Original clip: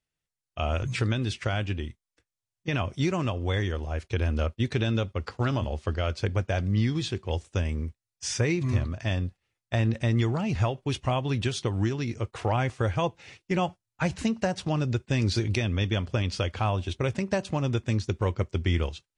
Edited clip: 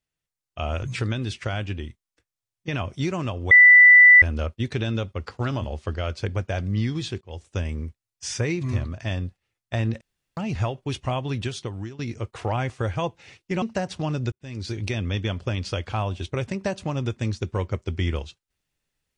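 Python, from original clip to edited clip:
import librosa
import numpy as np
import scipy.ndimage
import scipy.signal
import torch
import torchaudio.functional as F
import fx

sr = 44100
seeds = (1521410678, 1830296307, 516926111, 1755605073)

y = fx.edit(x, sr, fx.bleep(start_s=3.51, length_s=0.71, hz=1980.0, db=-7.5),
    fx.fade_in_from(start_s=7.21, length_s=0.36, floor_db=-21.5),
    fx.room_tone_fill(start_s=10.01, length_s=0.36),
    fx.fade_out_to(start_s=11.15, length_s=0.84, curve='qsin', floor_db=-14.5),
    fx.cut(start_s=13.62, length_s=0.67),
    fx.fade_in_span(start_s=14.99, length_s=0.65), tone=tone)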